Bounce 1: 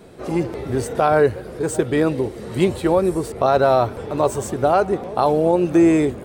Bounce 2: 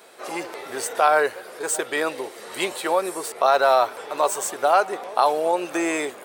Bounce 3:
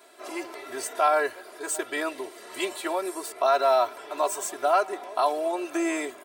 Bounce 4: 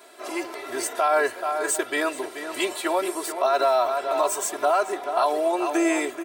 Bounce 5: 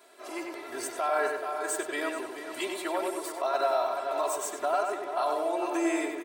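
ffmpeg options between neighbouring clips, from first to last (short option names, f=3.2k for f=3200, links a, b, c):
-af "highpass=820,highshelf=f=9.8k:g=5.5,volume=3.5dB"
-af "aecho=1:1:3:0.93,volume=-7.5dB"
-filter_complex "[0:a]asplit=2[a][b];[b]adelay=431.5,volume=-9dB,highshelf=f=4k:g=-9.71[c];[a][c]amix=inputs=2:normalize=0,alimiter=limit=-16dB:level=0:latency=1:release=62,volume=4.5dB"
-filter_complex "[0:a]asplit=2[a][b];[b]adelay=95,lowpass=f=3.2k:p=1,volume=-3.5dB,asplit=2[c][d];[d]adelay=95,lowpass=f=3.2k:p=1,volume=0.48,asplit=2[e][f];[f]adelay=95,lowpass=f=3.2k:p=1,volume=0.48,asplit=2[g][h];[h]adelay=95,lowpass=f=3.2k:p=1,volume=0.48,asplit=2[i][j];[j]adelay=95,lowpass=f=3.2k:p=1,volume=0.48,asplit=2[k][l];[l]adelay=95,lowpass=f=3.2k:p=1,volume=0.48[m];[a][c][e][g][i][k][m]amix=inputs=7:normalize=0,volume=-8dB"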